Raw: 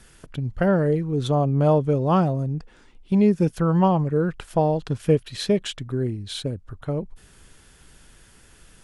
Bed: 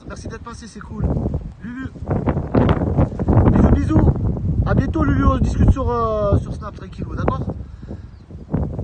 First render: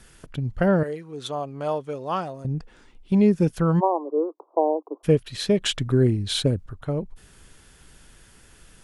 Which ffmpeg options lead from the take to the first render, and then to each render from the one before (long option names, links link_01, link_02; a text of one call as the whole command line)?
ffmpeg -i in.wav -filter_complex "[0:a]asettb=1/sr,asplit=3[link_01][link_02][link_03];[link_01]atrim=end=0.834[link_04];[link_02]atrim=start=0.83:end=2.45,asetpts=PTS-STARTPTS,afade=type=in:duration=0.004:curve=qsin,afade=type=out:start_time=1.616:duration=0.004:curve=qsin,highpass=frequency=1100:poles=1[link_05];[link_03]atrim=start=2.446[link_06];[link_04][link_05]acrossfade=duration=0.004:curve1=hsin:curve2=qsin[link_07];[link_07][link_06]acrossfade=duration=0.004:curve1=qsin:curve2=hsin,asplit=3[link_08][link_09][link_10];[link_08]afade=type=out:start_time=3.79:duration=0.02[link_11];[link_09]asuperpass=centerf=570:order=20:qfactor=0.69,afade=type=in:start_time=3.79:duration=0.02,afade=type=out:start_time=5.03:duration=0.02[link_12];[link_10]afade=type=in:start_time=5.03:duration=0.02[link_13];[link_11][link_12][link_13]amix=inputs=3:normalize=0,asplit=3[link_14][link_15][link_16];[link_14]atrim=end=5.632[link_17];[link_15]atrim=start=5.628:end=6.662,asetpts=PTS-STARTPTS,volume=6.5dB[link_18];[link_16]atrim=start=6.658[link_19];[link_17][link_18]acrossfade=duration=0.004:curve1=hsin:curve2=hsin[link_20];[link_20][link_19]acrossfade=duration=0.004:curve1=hsin:curve2=hsin" out.wav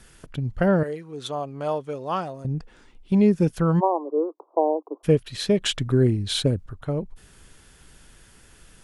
ffmpeg -i in.wav -af anull out.wav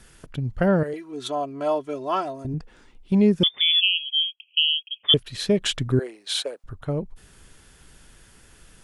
ffmpeg -i in.wav -filter_complex "[0:a]asettb=1/sr,asplit=3[link_01][link_02][link_03];[link_01]atrim=end=0.934[link_04];[link_02]atrim=start=0.93:end=2.54,asetpts=PTS-STARTPTS,afade=type=in:duration=0.004:curve=qsin,afade=type=out:start_time=1.606:duration=0.004:curve=qsin,aecho=1:1:3:0.84,atrim=end_sample=71001[link_05];[link_03]atrim=start=2.536[link_06];[link_04][link_05]acrossfade=duration=0.004:curve1=hsin:curve2=qsin[link_07];[link_07][link_06]acrossfade=duration=0.004:curve1=qsin:curve2=hsin,asettb=1/sr,asplit=3[link_08][link_09][link_10];[link_08]atrim=end=3.434[link_11];[link_09]atrim=start=3.43:end=5.14,asetpts=PTS-STARTPTS,afade=type=in:duration=0.004:curve=qsin,afade=type=out:start_time=1.706:duration=0.004:curve=qsin,lowpass=frequency=3100:width_type=q:width=0.5098,lowpass=frequency=3100:width_type=q:width=0.6013,lowpass=frequency=3100:width_type=q:width=0.9,lowpass=frequency=3100:width_type=q:width=2.563,afreqshift=-3600[link_12];[link_10]atrim=start=5.136[link_13];[link_11][link_12]acrossfade=duration=0.004:curve1=hsin:curve2=qsin[link_14];[link_14][link_13]acrossfade=duration=0.004:curve1=qsin:curve2=hsin,asettb=1/sr,asplit=3[link_15][link_16][link_17];[link_15]atrim=end=5.994[link_18];[link_16]atrim=start=5.99:end=6.64,asetpts=PTS-STARTPTS,afade=type=in:duration=0.004:curve=qsin,afade=type=out:start_time=0.646:duration=0.004:curve=qsin,highpass=frequency=520:width=0.5412,highpass=frequency=520:width=1.3066[link_19];[link_17]atrim=start=6.636[link_20];[link_18][link_19]acrossfade=duration=0.004:curve1=hsin:curve2=qsin[link_21];[link_21][link_20]acrossfade=duration=0.004:curve1=qsin:curve2=hsin" out.wav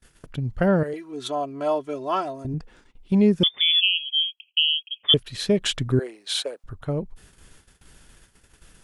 ffmpeg -i in.wav -af "agate=range=-28dB:threshold=-50dB:ratio=16:detection=peak" out.wav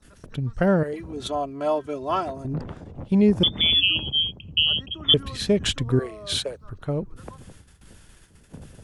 ffmpeg -i in.wav -i bed.wav -filter_complex "[1:a]volume=-21.5dB[link_01];[0:a][link_01]amix=inputs=2:normalize=0" out.wav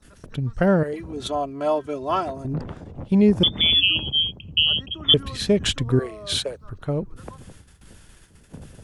ffmpeg -i in.wav -af "volume=1.5dB" out.wav